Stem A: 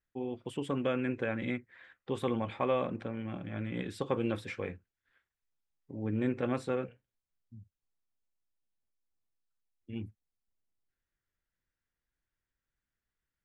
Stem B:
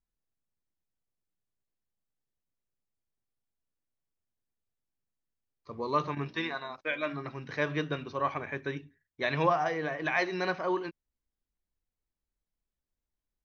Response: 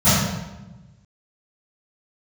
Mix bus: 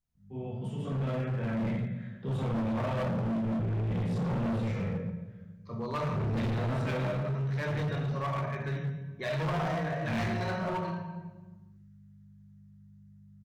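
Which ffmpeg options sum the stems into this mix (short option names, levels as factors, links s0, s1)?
-filter_complex "[0:a]dynaudnorm=f=500:g=7:m=1.68,aeval=exprs='val(0)+0.000794*(sin(2*PI*50*n/s)+sin(2*PI*2*50*n/s)/2+sin(2*PI*3*50*n/s)/3+sin(2*PI*4*50*n/s)/4+sin(2*PI*5*50*n/s)/5)':c=same,adelay=150,volume=0.316,asplit=2[s0][s1];[s1]volume=0.237[s2];[1:a]volume=0.75,asplit=2[s3][s4];[s4]volume=0.0944[s5];[2:a]atrim=start_sample=2205[s6];[s2][s5]amix=inputs=2:normalize=0[s7];[s7][s6]afir=irnorm=-1:irlink=0[s8];[s0][s3][s8]amix=inputs=3:normalize=0,asoftclip=type=hard:threshold=0.0562,alimiter=level_in=1.68:limit=0.0631:level=0:latency=1:release=354,volume=0.596"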